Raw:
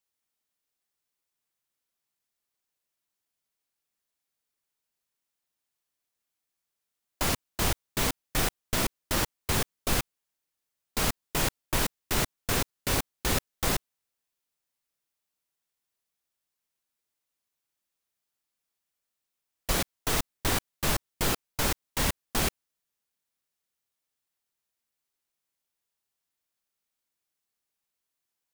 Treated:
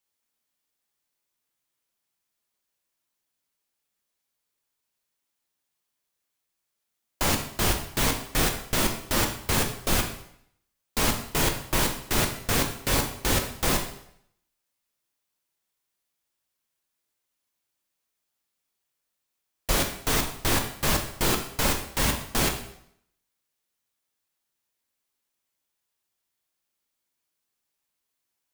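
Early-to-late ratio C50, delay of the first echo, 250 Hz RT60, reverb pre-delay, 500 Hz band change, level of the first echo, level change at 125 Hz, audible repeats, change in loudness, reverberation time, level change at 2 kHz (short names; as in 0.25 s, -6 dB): 7.5 dB, none, 0.65 s, 4 ms, +4.0 dB, none, +3.5 dB, none, +3.5 dB, 0.70 s, +3.5 dB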